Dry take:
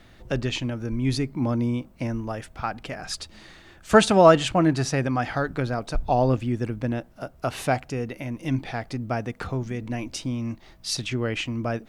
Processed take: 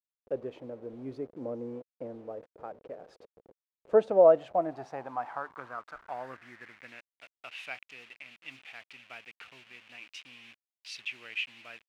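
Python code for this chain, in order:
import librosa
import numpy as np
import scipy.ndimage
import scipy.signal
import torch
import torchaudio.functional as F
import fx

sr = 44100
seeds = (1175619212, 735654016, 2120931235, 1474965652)

y = fx.delta_hold(x, sr, step_db=-34.0)
y = fx.filter_sweep_bandpass(y, sr, from_hz=490.0, to_hz=2600.0, start_s=4.02, end_s=7.22, q=4.2)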